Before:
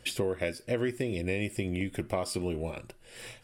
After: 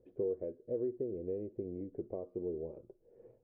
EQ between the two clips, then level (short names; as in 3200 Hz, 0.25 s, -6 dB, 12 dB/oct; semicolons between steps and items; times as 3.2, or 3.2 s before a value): ladder low-pass 490 Hz, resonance 60%; tilt +3.5 dB/oct; low shelf 73 Hz +10 dB; +3.0 dB